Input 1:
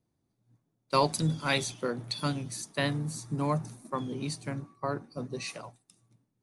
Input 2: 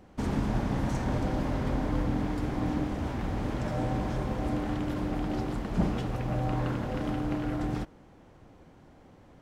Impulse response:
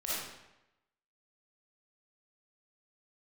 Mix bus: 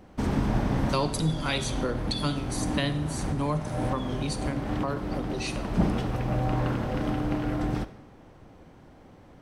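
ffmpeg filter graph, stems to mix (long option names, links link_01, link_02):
-filter_complex "[0:a]acrossover=split=400[link_01][link_02];[link_02]acompressor=threshold=-30dB:ratio=3[link_03];[link_01][link_03]amix=inputs=2:normalize=0,equalizer=frequency=3200:width_type=o:width=0.42:gain=7,volume=1dB,asplit=3[link_04][link_05][link_06];[link_05]volume=-15.5dB[link_07];[1:a]bandreject=frequency=7000:width=14,volume=2.5dB,asplit=2[link_08][link_09];[link_09]volume=-18dB[link_10];[link_06]apad=whole_len=415221[link_11];[link_08][link_11]sidechaincompress=threshold=-35dB:ratio=8:attack=5.9:release=344[link_12];[2:a]atrim=start_sample=2205[link_13];[link_07][link_10]amix=inputs=2:normalize=0[link_14];[link_14][link_13]afir=irnorm=-1:irlink=0[link_15];[link_04][link_12][link_15]amix=inputs=3:normalize=0"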